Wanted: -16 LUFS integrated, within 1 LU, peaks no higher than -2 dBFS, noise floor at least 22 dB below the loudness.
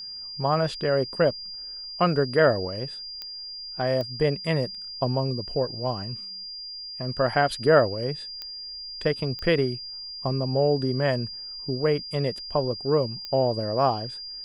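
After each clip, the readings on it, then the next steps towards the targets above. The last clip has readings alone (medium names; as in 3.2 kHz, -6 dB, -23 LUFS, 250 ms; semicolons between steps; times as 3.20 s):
clicks found 5; steady tone 4.8 kHz; tone level -35 dBFS; loudness -26.0 LUFS; peak level -7.0 dBFS; loudness target -16.0 LUFS
-> de-click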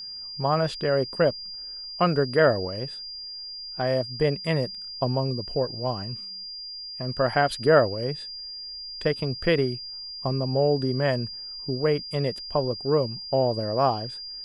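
clicks found 0; steady tone 4.8 kHz; tone level -35 dBFS
-> band-stop 4.8 kHz, Q 30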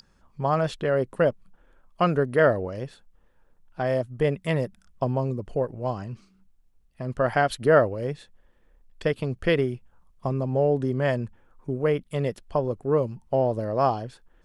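steady tone not found; loudness -25.5 LUFS; peak level -7.0 dBFS; loudness target -16.0 LUFS
-> trim +9.5 dB; peak limiter -2 dBFS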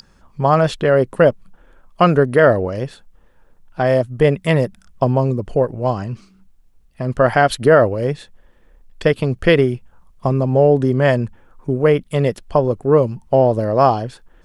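loudness -16.5 LUFS; peak level -2.0 dBFS; noise floor -53 dBFS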